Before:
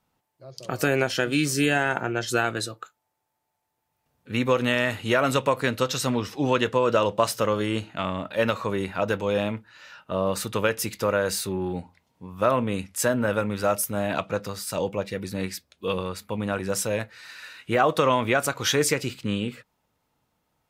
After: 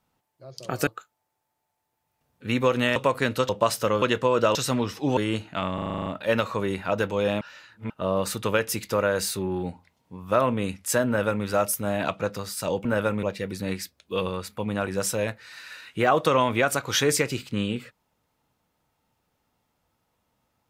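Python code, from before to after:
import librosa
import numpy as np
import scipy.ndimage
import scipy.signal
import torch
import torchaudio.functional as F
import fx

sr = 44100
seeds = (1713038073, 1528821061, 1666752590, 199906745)

y = fx.edit(x, sr, fx.cut(start_s=0.87, length_s=1.85),
    fx.cut(start_s=4.81, length_s=0.57),
    fx.swap(start_s=5.91, length_s=0.62, other_s=7.06, other_length_s=0.53),
    fx.stutter(start_s=8.16, slice_s=0.04, count=9),
    fx.reverse_span(start_s=9.51, length_s=0.49),
    fx.duplicate(start_s=13.17, length_s=0.38, to_s=14.95), tone=tone)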